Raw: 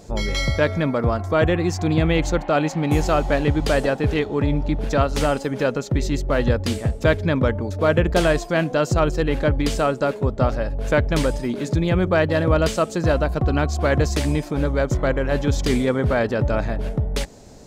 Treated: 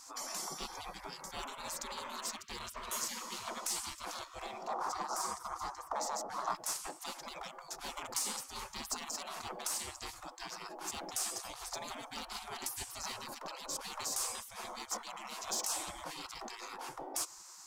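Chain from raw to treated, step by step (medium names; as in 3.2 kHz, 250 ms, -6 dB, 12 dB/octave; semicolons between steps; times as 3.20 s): whistle 440 Hz -38 dBFS; spectral gate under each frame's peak -30 dB weak; 4.67–6.55 s: FFT filter 240 Hz 0 dB, 1.2 kHz +12 dB, 2.8 kHz -13 dB, 5.6 kHz -1 dB, 11 kHz -8 dB; in parallel at -5 dB: hard clipper -36 dBFS, distortion -11 dB; on the sum: high-order bell 2.5 kHz -10 dB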